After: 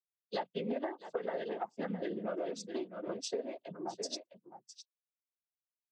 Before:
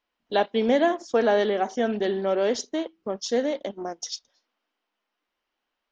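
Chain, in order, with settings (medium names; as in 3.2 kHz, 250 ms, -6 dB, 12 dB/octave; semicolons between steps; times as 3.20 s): expander on every frequency bin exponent 2; treble shelf 6 kHz -11.5 dB; delay 658 ms -15 dB; noise-vocoded speech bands 16; compression 6:1, threshold -38 dBFS, peak gain reduction 19.5 dB; trim +3 dB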